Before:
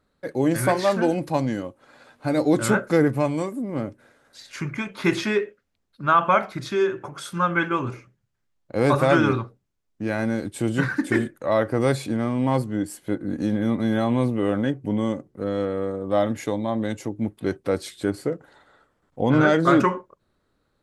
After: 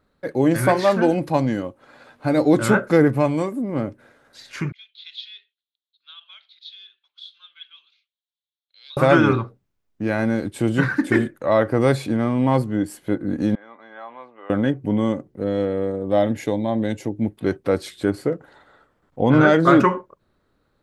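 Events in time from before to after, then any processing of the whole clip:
4.72–8.97 Butterworth band-pass 3700 Hz, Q 3.9
13.55–14.5 ladder band-pass 1300 Hz, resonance 20%
15.3–17.37 bell 1200 Hz -8.5 dB 0.53 oct
whole clip: bell 8100 Hz -5.5 dB 1.6 oct; gain +3.5 dB

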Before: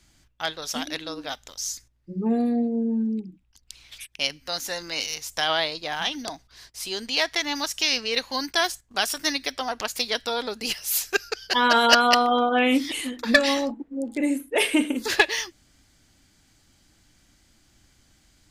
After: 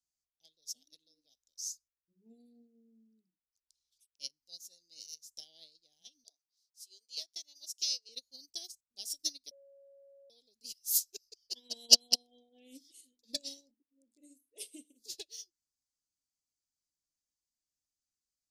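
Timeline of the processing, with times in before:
6.24–8.09 HPF 420 Hz 24 dB/oct
9.51–10.3 bleep 555 Hz -16 dBFS
whole clip: Chebyshev band-stop 490–3200 Hz, order 2; resonant high shelf 3700 Hz +14 dB, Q 1.5; upward expander 2.5:1, over -26 dBFS; gain -10.5 dB

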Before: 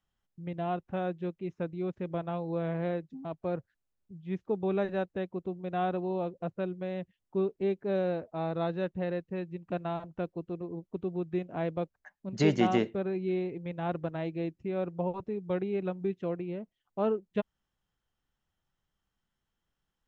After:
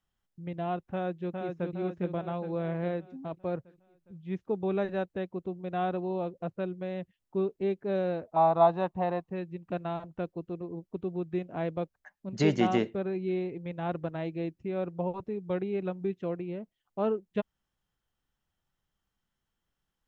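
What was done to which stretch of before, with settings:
0.92–1.74 echo throw 0.41 s, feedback 55%, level -4 dB
8.36–9.32 band shelf 880 Hz +15 dB 1 oct

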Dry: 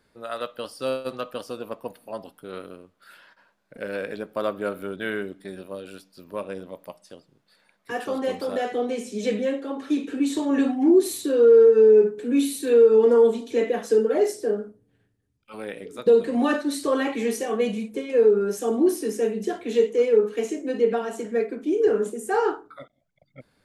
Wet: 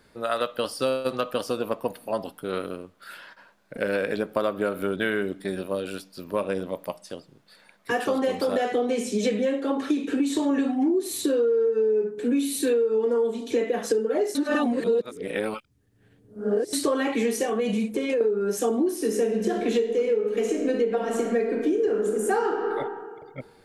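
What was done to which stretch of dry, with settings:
14.35–16.73 reverse
17.46–18.21 compressor, threshold -27 dBFS
18.93–22.69 reverb throw, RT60 1.6 s, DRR 5.5 dB
whole clip: compressor 10:1, threshold -28 dBFS; gain +7.5 dB

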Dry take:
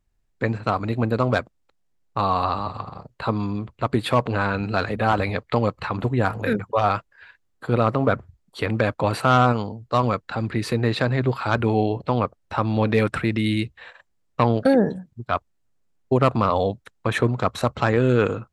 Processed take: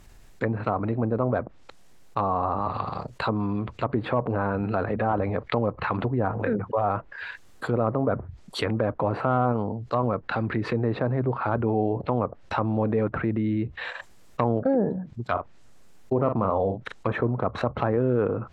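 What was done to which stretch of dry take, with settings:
15.29–17.12 doubler 42 ms -10.5 dB
whole clip: treble ducked by the level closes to 910 Hz, closed at -19.5 dBFS; low shelf 210 Hz -5 dB; fast leveller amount 50%; gain -4.5 dB

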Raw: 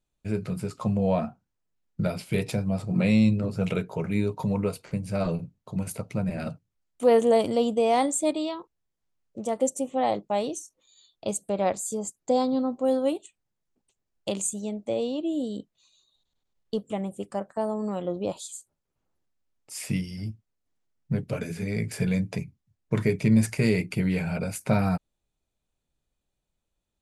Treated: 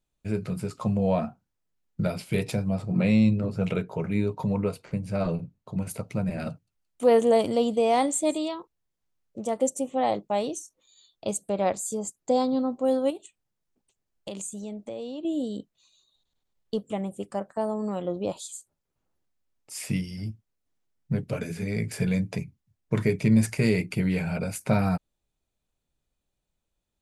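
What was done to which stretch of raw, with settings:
2.75–5.9 high shelf 4700 Hz -7 dB
6.5–8.48 thin delay 0.172 s, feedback 49%, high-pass 3700 Hz, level -17 dB
13.1–15.25 compressor 3:1, threshold -34 dBFS

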